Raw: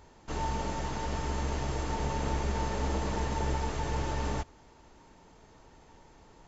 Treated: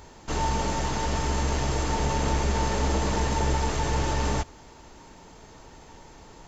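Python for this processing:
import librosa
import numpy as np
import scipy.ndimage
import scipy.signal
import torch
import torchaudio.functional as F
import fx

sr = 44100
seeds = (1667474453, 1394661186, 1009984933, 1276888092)

p1 = fx.high_shelf(x, sr, hz=4000.0, db=5.5)
p2 = 10.0 ** (-35.5 / 20.0) * np.tanh(p1 / 10.0 ** (-35.5 / 20.0))
p3 = p1 + (p2 * librosa.db_to_amplitude(-6.5))
y = p3 * librosa.db_to_amplitude(4.5)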